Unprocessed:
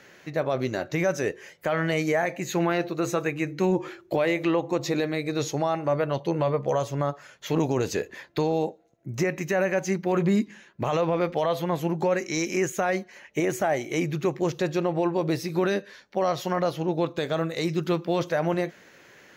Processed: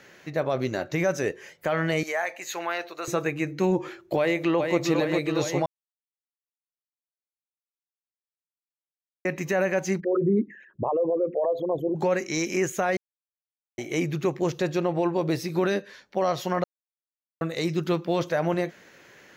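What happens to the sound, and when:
2.03–3.08 s: high-pass 730 Hz
4.18–4.78 s: echo throw 410 ms, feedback 75%, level -4.5 dB
5.66–9.25 s: mute
10.00–11.96 s: resonances exaggerated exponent 3
12.97–13.78 s: mute
16.64–17.41 s: mute

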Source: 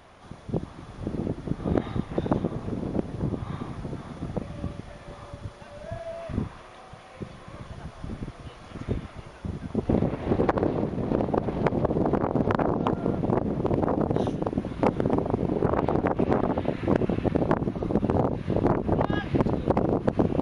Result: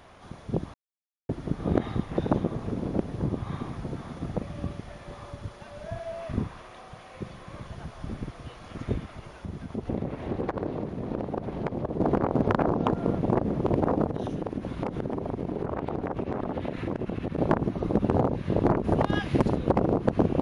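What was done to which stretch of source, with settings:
0.74–1.29 s: mute
9.04–12.00 s: compression 1.5:1, threshold -37 dBFS
14.06–17.38 s: compression 5:1, threshold -26 dBFS
18.84–19.56 s: treble shelf 5 kHz +10.5 dB

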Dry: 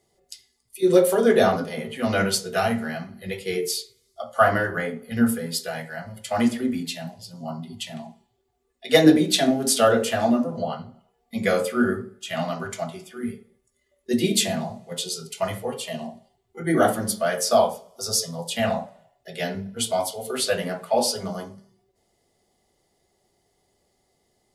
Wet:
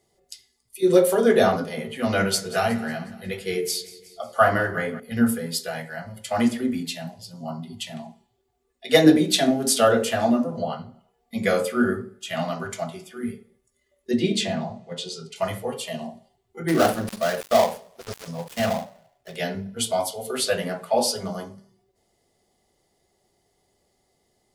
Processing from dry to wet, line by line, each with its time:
2.09–5.00 s: feedback delay 182 ms, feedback 54%, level -18 dB
14.11–15.36 s: distance through air 96 m
16.68–19.36 s: dead-time distortion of 0.14 ms

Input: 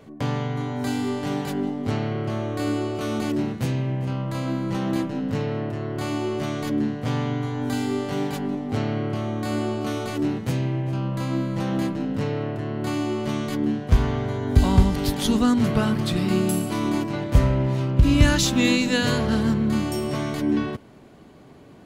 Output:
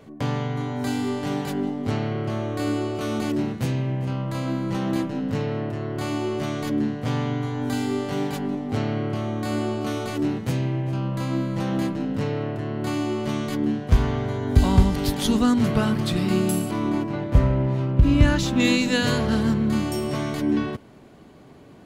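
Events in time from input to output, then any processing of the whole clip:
16.71–18.60 s: treble shelf 3.3 kHz -11.5 dB

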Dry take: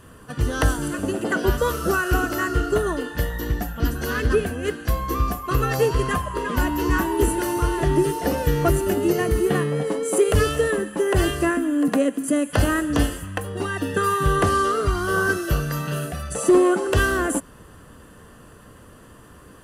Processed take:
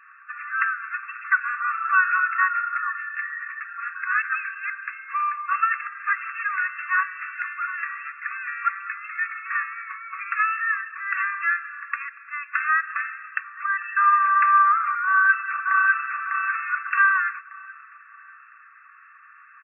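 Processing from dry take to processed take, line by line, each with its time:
5.81–6.43 s: reverse
15.05–16.21 s: echo throw 600 ms, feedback 40%, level -1.5 dB
whole clip: FFT band-pass 1.1–2.7 kHz; trim +6 dB

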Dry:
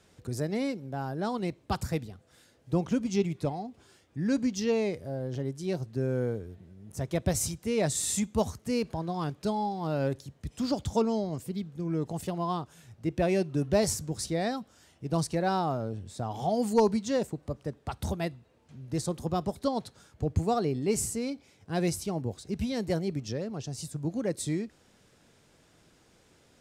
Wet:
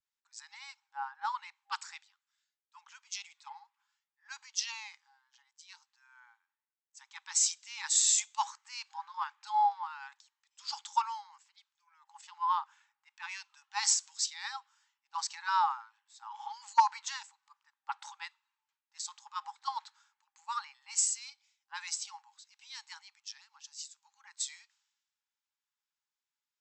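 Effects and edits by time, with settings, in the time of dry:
1.64–3.27 s: high-pass 1.1 kHz
whole clip: FFT band-pass 800–8100 Hz; three bands expanded up and down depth 100%; trim -2 dB

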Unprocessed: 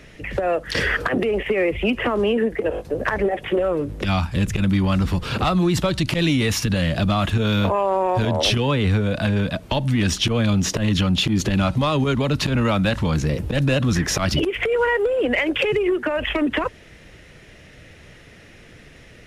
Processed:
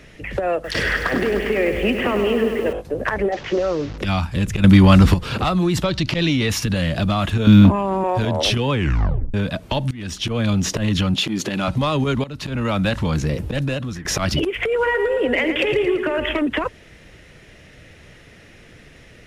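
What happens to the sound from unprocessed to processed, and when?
0.54–2.73 s: bit-crushed delay 101 ms, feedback 80%, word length 7-bit, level -8 dB
3.32–3.98 s: one-bit delta coder 32 kbps, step -31 dBFS
4.64–5.14 s: gain +9 dB
5.84–6.50 s: resonant high shelf 7 kHz -8.5 dB, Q 1.5
7.47–8.04 s: resonant low shelf 360 Hz +9 dB, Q 3
8.71 s: tape stop 0.63 s
9.91–10.48 s: fade in, from -19.5 dB
11.14–11.68 s: high-pass 220 Hz
12.24–12.82 s: fade in, from -17 dB
13.41–14.05 s: fade out, to -15.5 dB
14.72–16.39 s: feedback delay 112 ms, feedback 56%, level -8 dB

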